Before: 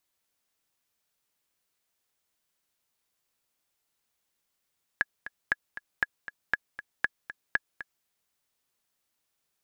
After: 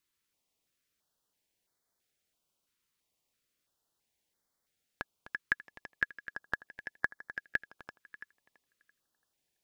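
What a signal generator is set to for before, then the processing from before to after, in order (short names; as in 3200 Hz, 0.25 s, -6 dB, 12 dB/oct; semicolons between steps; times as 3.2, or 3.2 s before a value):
metronome 236 bpm, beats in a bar 2, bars 6, 1680 Hz, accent 14 dB -10.5 dBFS
high shelf 5900 Hz -5 dB; on a send: tape echo 0.335 s, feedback 31%, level -7 dB, low-pass 5800 Hz; on the sum: stepped notch 3 Hz 700–2700 Hz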